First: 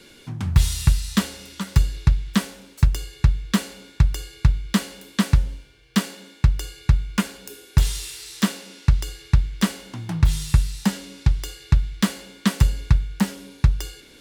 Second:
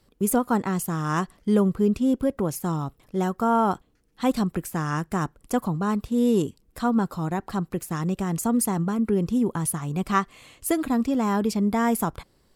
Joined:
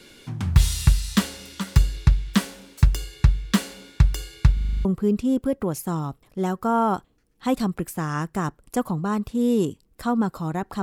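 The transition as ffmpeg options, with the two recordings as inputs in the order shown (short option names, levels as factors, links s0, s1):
-filter_complex "[0:a]apad=whole_dur=10.82,atrim=end=10.82,asplit=8[s0][s1][s2][s3][s4][s5][s6][s7];[s0]atrim=end=4.572[s8];[s1]atrim=start=4.528:end=4.572[s9];[s2]atrim=start=4.528:end=4.572[s10];[s3]atrim=start=4.528:end=4.572[s11];[s4]atrim=start=4.528:end=4.572[s12];[s5]atrim=start=4.528:end=4.572[s13];[s6]atrim=start=4.528:end=4.572[s14];[s7]atrim=start=4.528:end=4.572[s15];[1:a]atrim=start=1.618:end=7.59[s16];[s8][s9]acrossfade=d=0.004:c1=hsin:c2=hsin[s17];[s17][s10]acrossfade=d=0.004:c1=hsin:c2=hsin[s18];[s18][s11]acrossfade=d=0.004:c1=hsin:c2=hsin[s19];[s19][s12]acrossfade=d=0.004:c1=hsin:c2=hsin[s20];[s20][s13]acrossfade=d=0.004:c1=hsin:c2=hsin[s21];[s21][s14]acrossfade=d=0.004:c1=hsin:c2=hsin[s22];[s22][s15]acrossfade=d=0.004:c1=hsin:c2=hsin[s23];[s23][s16]acrossfade=d=0.004:c1=hsin:c2=hsin"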